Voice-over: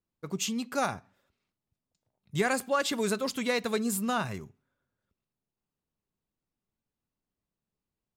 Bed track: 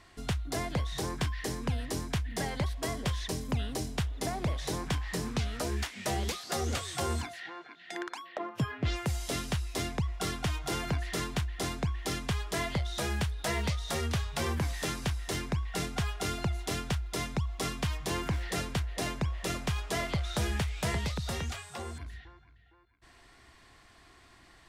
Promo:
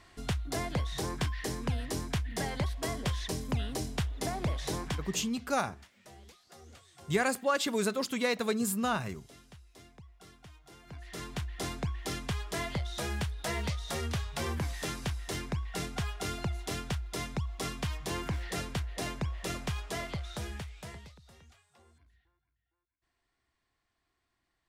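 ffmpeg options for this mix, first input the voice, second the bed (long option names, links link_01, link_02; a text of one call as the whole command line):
ffmpeg -i stem1.wav -i stem2.wav -filter_complex "[0:a]adelay=4750,volume=-1dB[link_01];[1:a]volume=18.5dB,afade=type=out:start_time=4.76:duration=0.58:silence=0.0891251,afade=type=in:start_time=10.84:duration=0.74:silence=0.112202,afade=type=out:start_time=19.63:duration=1.56:silence=0.0944061[link_02];[link_01][link_02]amix=inputs=2:normalize=0" out.wav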